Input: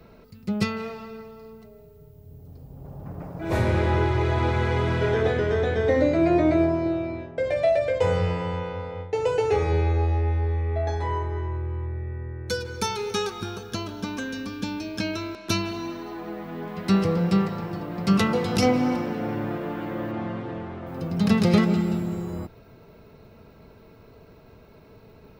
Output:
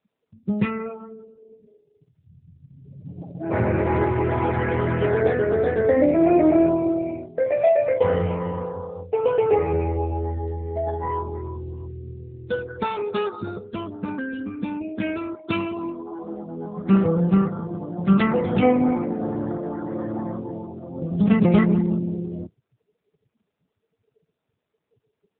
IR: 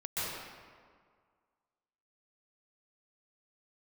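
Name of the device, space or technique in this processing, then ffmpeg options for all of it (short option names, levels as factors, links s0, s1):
mobile call with aggressive noise cancelling: -filter_complex "[0:a]asettb=1/sr,asplit=3[s0][s1][s2];[s0]atrim=end=11.824[s3];[s1]atrim=start=11.82:end=12.53,asetpts=PTS-STARTPTS,afade=t=in:d=0.004:c=qsin,afade=t=out:st=0.706:d=0.004:c=qsin,highpass=62[s4];[s2]atrim=start=12.526[s5];[s3][s4]acrossfade=d=0.004:c1=hsin:c2=qsin[s6];[s6][s5]acrossfade=d=0.004:c1=qsin:c2=hsin,highpass=f=100:p=1,afftdn=nr=34:nf=-33,volume=1.58" -ar 8000 -c:a libopencore_amrnb -b:a 7950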